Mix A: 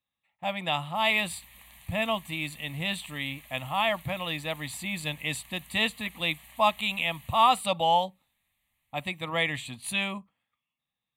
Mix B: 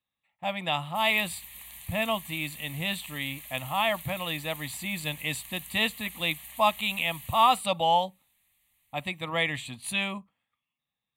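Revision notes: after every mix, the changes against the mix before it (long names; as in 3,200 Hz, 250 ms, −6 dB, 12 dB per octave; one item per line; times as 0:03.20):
background: add high-shelf EQ 3,500 Hz +10.5 dB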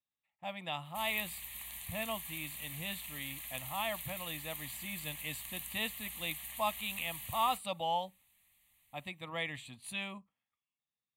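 speech −10.5 dB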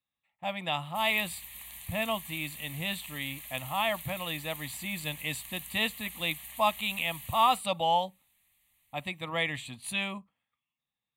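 speech +7.5 dB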